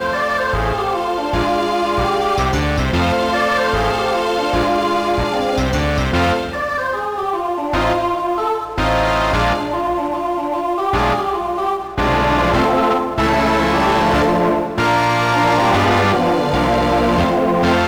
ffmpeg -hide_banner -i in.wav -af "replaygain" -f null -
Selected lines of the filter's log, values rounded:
track_gain = -0.6 dB
track_peak = 0.215